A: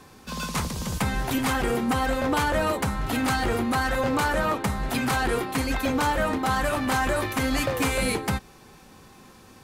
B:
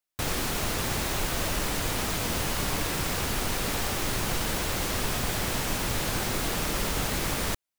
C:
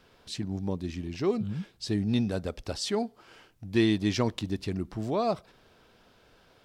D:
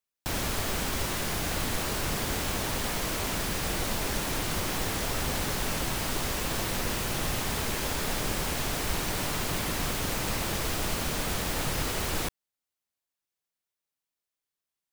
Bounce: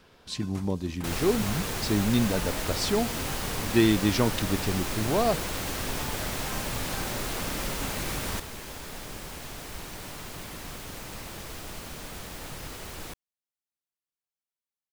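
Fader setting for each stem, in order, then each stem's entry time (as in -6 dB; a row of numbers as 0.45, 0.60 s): -18.5, -4.0, +2.5, -9.5 dB; 0.00, 0.85, 0.00, 0.85 s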